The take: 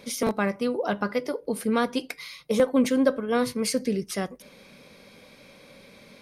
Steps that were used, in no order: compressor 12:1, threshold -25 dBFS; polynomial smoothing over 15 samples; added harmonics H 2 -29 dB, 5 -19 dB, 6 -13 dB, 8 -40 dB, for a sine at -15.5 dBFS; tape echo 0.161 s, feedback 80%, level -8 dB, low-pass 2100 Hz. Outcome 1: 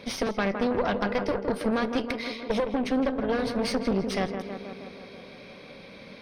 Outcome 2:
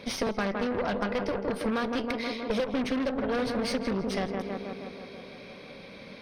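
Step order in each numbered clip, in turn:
compressor > tape echo > added harmonics > polynomial smoothing; tape echo > added harmonics > polynomial smoothing > compressor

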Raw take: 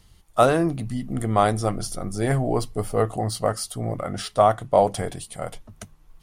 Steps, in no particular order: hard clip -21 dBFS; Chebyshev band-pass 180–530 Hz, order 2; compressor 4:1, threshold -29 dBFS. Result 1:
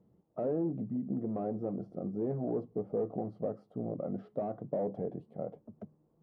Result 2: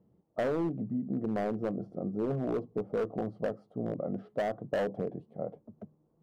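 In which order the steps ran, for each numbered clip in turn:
hard clip > compressor > Chebyshev band-pass; Chebyshev band-pass > hard clip > compressor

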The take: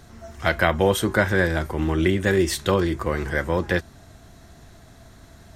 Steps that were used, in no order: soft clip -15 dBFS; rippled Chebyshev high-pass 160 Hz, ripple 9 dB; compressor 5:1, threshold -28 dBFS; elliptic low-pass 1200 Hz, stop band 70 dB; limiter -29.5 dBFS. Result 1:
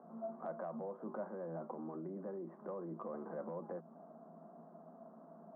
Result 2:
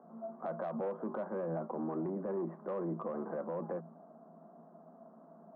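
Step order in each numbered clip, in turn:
elliptic low-pass > compressor > soft clip > limiter > rippled Chebyshev high-pass; elliptic low-pass > soft clip > rippled Chebyshev high-pass > compressor > limiter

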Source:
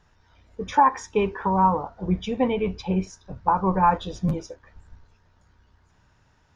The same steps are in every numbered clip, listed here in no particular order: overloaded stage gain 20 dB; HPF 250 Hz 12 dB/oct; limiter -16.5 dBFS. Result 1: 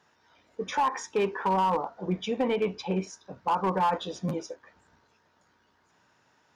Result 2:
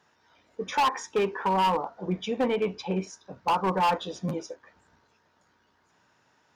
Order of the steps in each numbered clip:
HPF > limiter > overloaded stage; HPF > overloaded stage > limiter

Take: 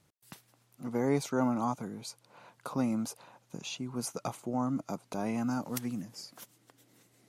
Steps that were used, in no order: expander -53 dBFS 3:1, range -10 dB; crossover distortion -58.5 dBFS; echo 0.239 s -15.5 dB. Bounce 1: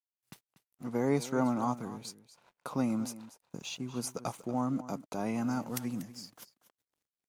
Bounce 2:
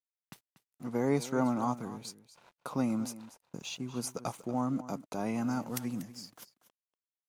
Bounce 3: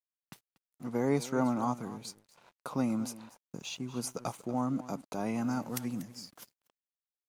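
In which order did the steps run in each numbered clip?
crossover distortion > expander > echo; expander > crossover distortion > echo; expander > echo > crossover distortion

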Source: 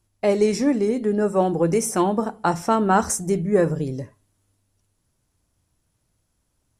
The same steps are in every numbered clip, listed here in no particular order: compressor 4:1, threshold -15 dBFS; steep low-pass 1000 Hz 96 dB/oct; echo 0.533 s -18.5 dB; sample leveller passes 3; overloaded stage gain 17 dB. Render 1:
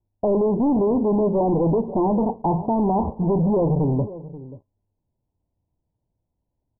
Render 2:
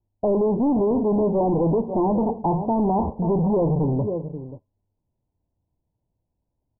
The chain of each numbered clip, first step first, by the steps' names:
sample leveller > compressor > echo > overloaded stage > steep low-pass; echo > overloaded stage > sample leveller > steep low-pass > compressor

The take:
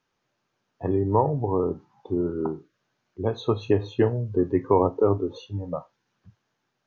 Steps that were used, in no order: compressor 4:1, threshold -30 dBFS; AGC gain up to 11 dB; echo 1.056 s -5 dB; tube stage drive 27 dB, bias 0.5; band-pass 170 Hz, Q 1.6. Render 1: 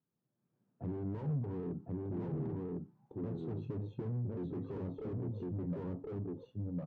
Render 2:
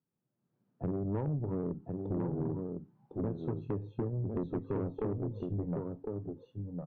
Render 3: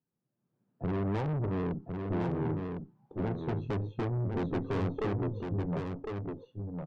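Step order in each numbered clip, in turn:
echo > AGC > tube stage > compressor > band-pass; band-pass > AGC > compressor > echo > tube stage; band-pass > AGC > tube stage > compressor > echo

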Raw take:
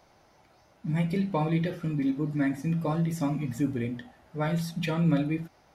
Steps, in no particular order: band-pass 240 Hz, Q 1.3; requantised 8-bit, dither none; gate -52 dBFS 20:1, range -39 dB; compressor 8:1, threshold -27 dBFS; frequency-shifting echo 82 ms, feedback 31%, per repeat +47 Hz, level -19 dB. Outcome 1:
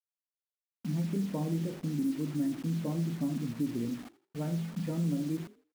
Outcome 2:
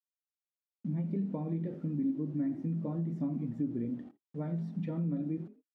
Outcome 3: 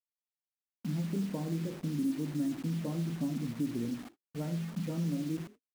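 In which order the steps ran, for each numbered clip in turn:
band-pass > compressor > requantised > gate > frequency-shifting echo; requantised > frequency-shifting echo > gate > compressor > band-pass; compressor > band-pass > requantised > frequency-shifting echo > gate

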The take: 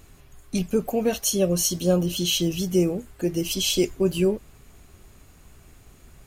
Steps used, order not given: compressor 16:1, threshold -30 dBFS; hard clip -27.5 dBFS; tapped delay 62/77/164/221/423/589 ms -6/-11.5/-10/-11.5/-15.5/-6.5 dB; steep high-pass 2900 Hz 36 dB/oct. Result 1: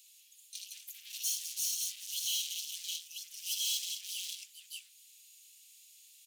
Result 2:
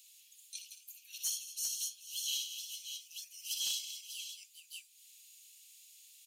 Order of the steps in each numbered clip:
tapped delay > hard clip > compressor > steep high-pass; tapped delay > compressor > steep high-pass > hard clip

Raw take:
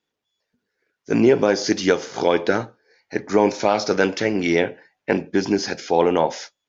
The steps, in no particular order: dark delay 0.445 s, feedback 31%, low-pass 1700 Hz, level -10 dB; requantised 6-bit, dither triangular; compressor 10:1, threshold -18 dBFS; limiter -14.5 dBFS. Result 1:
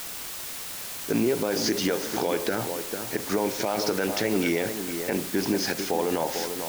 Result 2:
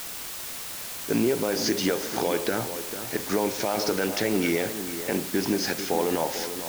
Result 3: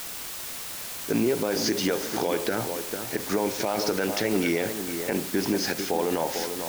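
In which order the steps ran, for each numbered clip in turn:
compressor > dark delay > requantised > limiter; compressor > limiter > requantised > dark delay; compressor > requantised > dark delay > limiter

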